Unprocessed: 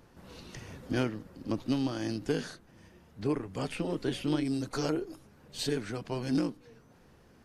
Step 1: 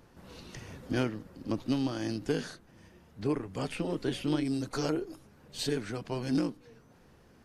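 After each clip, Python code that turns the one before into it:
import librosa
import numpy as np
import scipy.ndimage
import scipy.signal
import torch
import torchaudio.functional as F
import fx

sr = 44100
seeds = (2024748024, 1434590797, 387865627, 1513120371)

y = x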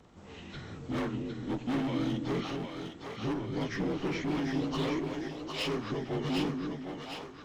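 y = fx.partial_stretch(x, sr, pct=86)
y = np.clip(y, -10.0 ** (-33.0 / 20.0), 10.0 ** (-33.0 / 20.0))
y = fx.echo_split(y, sr, split_hz=460.0, low_ms=244, high_ms=757, feedback_pct=52, wet_db=-4)
y = F.gain(torch.from_numpy(y), 3.5).numpy()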